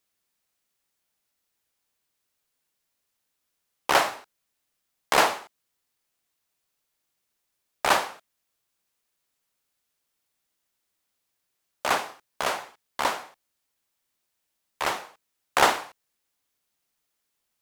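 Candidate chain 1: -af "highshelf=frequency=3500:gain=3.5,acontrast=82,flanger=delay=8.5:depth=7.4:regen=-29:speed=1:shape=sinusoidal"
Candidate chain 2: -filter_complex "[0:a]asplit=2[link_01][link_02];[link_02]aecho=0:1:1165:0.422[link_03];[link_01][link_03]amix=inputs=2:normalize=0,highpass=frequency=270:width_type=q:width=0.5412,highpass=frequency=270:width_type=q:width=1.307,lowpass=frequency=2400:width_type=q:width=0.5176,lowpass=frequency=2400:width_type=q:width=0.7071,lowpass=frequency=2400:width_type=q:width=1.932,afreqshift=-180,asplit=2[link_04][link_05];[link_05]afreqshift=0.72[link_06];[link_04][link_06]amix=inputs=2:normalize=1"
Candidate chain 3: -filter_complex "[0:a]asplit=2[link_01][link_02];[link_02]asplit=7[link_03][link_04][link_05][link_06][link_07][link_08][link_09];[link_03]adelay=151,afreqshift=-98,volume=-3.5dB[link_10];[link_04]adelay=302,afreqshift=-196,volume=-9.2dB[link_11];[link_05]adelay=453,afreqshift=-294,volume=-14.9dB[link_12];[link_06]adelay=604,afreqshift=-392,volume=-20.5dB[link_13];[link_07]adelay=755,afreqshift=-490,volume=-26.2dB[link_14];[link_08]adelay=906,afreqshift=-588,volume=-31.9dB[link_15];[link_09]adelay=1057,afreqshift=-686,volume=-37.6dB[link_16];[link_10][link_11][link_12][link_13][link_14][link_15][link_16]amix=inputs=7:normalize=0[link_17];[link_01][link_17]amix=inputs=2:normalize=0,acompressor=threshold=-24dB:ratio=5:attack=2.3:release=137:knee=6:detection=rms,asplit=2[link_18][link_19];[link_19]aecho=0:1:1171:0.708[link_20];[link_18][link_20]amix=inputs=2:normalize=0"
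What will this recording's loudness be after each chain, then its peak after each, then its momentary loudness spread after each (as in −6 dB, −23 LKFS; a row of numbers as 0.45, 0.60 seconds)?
−23.0, −31.5, −33.0 LKFS; −4.5, −7.5, −11.0 dBFS; 15, 17, 13 LU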